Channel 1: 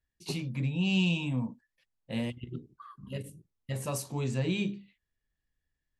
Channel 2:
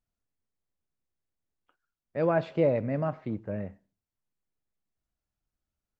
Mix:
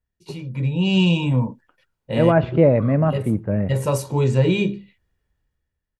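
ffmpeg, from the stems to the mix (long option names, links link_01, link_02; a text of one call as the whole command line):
ffmpeg -i stem1.wav -i stem2.wav -filter_complex "[0:a]highpass=44,highshelf=frequency=2100:gain=-10,aecho=1:1:2.1:0.47,volume=1dB[link_01];[1:a]bass=frequency=250:gain=6,treble=frequency=4000:gain=-14,volume=-3dB[link_02];[link_01][link_02]amix=inputs=2:normalize=0,dynaudnorm=framelen=120:gausssize=11:maxgain=12.5dB" out.wav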